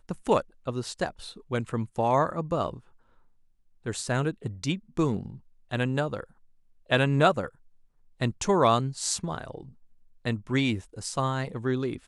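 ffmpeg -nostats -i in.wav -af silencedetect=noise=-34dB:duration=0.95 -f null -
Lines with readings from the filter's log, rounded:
silence_start: 2.77
silence_end: 3.86 | silence_duration: 1.10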